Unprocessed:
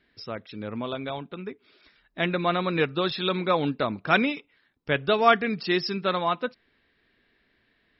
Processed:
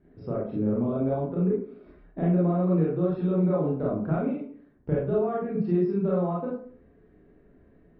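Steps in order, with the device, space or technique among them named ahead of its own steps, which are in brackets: television next door (compressor 5:1, threshold -37 dBFS, peak gain reduction 21 dB; LPF 550 Hz 12 dB/oct; reverb RT60 0.50 s, pre-delay 25 ms, DRR -6 dB); gain +7.5 dB

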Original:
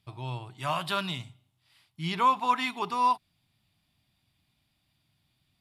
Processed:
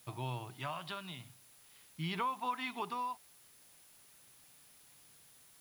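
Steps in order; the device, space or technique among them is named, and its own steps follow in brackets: medium wave at night (BPF 120–4300 Hz; compressor, threshold -35 dBFS, peak gain reduction 15.5 dB; tremolo 0.42 Hz, depth 54%; whine 10000 Hz -66 dBFS; white noise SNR 20 dB); gain +1 dB

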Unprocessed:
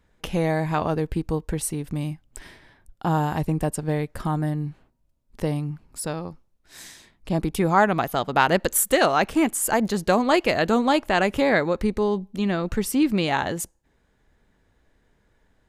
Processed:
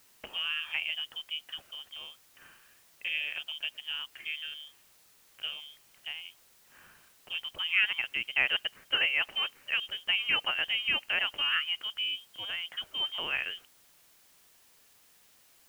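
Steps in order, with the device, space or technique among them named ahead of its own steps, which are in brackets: scrambled radio voice (BPF 370–3200 Hz; inverted band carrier 3400 Hz; white noise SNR 27 dB); gain -8 dB

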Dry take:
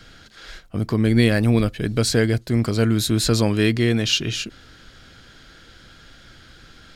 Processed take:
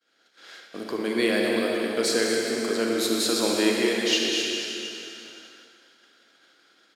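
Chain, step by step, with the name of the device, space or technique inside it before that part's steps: cave (echo 0.238 s -10.5 dB; reverb RT60 3.0 s, pre-delay 37 ms, DRR -1 dB); HPF 290 Hz 24 dB/oct; expander -37 dBFS; gain -4.5 dB

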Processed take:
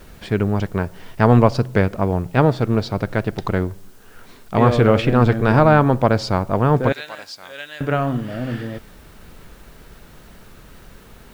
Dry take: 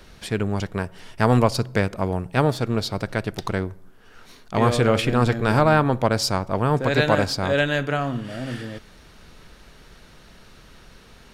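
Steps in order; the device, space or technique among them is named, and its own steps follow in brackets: 6.92–7.81 differentiator; cassette deck with a dirty head (tape spacing loss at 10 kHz 21 dB; wow and flutter; white noise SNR 36 dB); gain +5.5 dB

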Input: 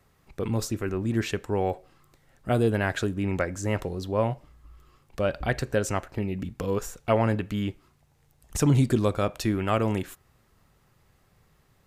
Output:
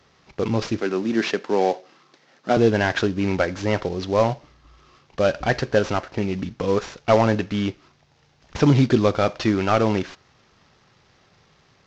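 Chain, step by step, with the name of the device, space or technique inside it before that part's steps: early wireless headset (HPF 180 Hz 6 dB/oct; CVSD 32 kbps); 0.8–2.57 HPF 180 Hz 24 dB/oct; gain +8 dB

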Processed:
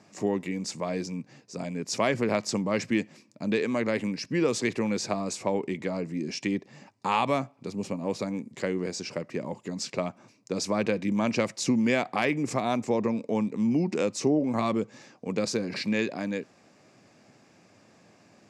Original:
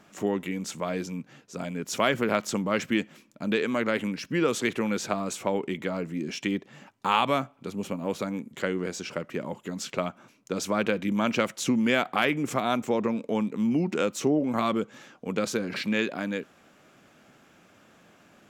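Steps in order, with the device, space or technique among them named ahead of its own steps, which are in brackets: car door speaker (speaker cabinet 85–9400 Hz, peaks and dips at 110 Hz +6 dB, 1400 Hz -10 dB, 3200 Hz -9 dB, 4900 Hz +7 dB)

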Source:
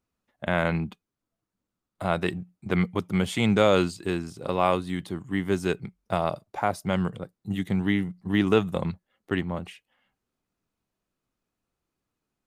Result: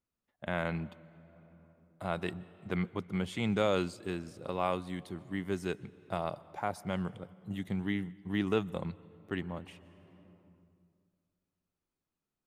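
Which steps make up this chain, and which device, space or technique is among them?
2.78–3.52 high shelf 6400 Hz -6.5 dB; compressed reverb return (on a send at -6 dB: reverb RT60 2.0 s, pre-delay 0.118 s + compressor 5:1, threshold -39 dBFS, peak gain reduction 21 dB); on the sum: gain -9 dB

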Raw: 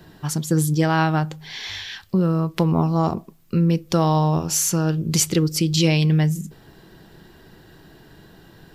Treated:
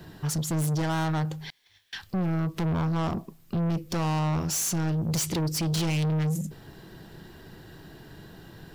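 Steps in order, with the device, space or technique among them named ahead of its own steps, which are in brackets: 1.5–1.93 gate -27 dBFS, range -36 dB; open-reel tape (soft clip -25.5 dBFS, distortion -6 dB; bell 110 Hz +3 dB 1.18 oct; white noise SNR 47 dB)

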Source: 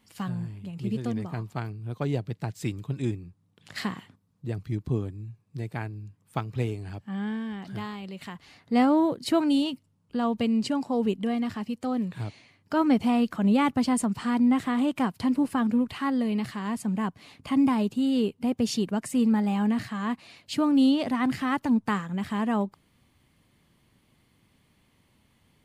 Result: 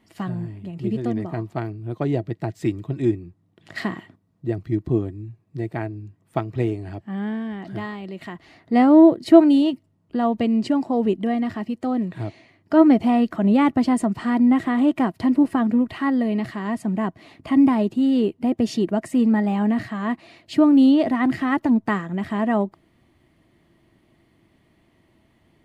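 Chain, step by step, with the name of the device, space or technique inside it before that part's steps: inside a helmet (high shelf 4000 Hz -9 dB; small resonant body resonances 340/650/1900 Hz, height 11 dB, ringing for 45 ms); gain +3 dB

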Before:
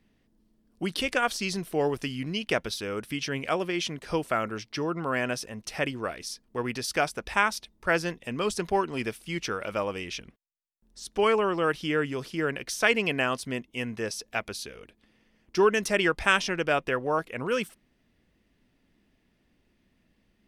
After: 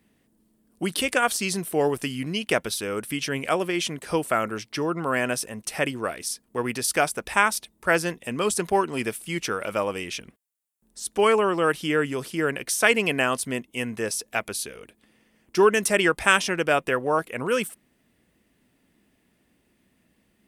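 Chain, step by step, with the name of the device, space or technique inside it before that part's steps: budget condenser microphone (HPF 110 Hz 6 dB/oct; resonant high shelf 6800 Hz +7 dB, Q 1.5); gain +4 dB

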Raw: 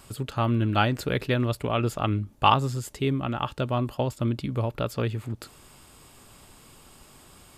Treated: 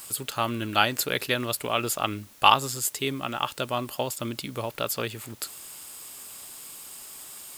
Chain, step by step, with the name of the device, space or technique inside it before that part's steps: turntable without a phono preamp (RIAA curve recording; white noise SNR 25 dB); gain +1 dB

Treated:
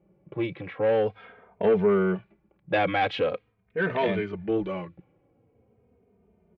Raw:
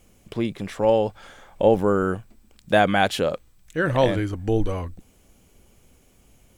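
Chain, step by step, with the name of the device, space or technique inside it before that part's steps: low-pass opened by the level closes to 700 Hz, open at -19 dBFS; barber-pole flanger into a guitar amplifier (endless flanger 3 ms -0.43 Hz; soft clip -18 dBFS, distortion -14 dB; speaker cabinet 110–3600 Hz, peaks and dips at 180 Hz +5 dB, 260 Hz -6 dB, 420 Hz +6 dB, 2300 Hz +7 dB)

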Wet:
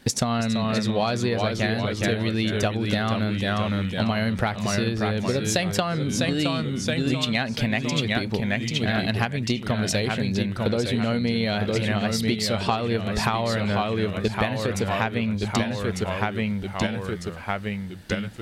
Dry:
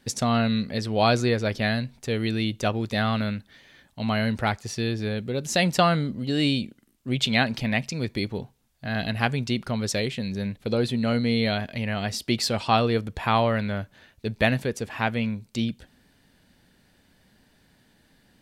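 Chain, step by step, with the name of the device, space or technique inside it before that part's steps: echoes that change speed 0.321 s, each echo -1 st, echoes 3, each echo -6 dB; drum-bus smash (transient shaper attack +7 dB, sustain +2 dB; compressor 12:1, threshold -27 dBFS, peak gain reduction 18 dB; soft clip -15.5 dBFS, distortion -28 dB); gain +7.5 dB

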